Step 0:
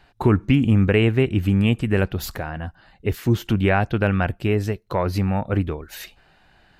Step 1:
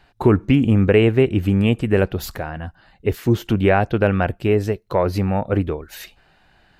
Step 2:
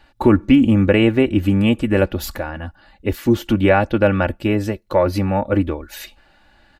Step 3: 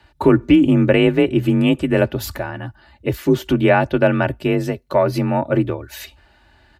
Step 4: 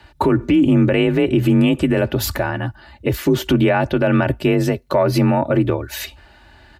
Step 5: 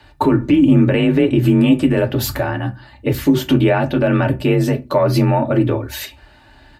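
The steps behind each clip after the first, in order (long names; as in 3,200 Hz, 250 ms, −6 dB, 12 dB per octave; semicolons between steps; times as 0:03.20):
dynamic equaliser 490 Hz, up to +6 dB, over −32 dBFS, Q 0.94
comb filter 3.5 ms, depth 63%; level +1 dB
frequency shifter +34 Hz
boost into a limiter +12.5 dB; level −6.5 dB
convolution reverb RT60 0.25 s, pre-delay 4 ms, DRR 3.5 dB; level −1 dB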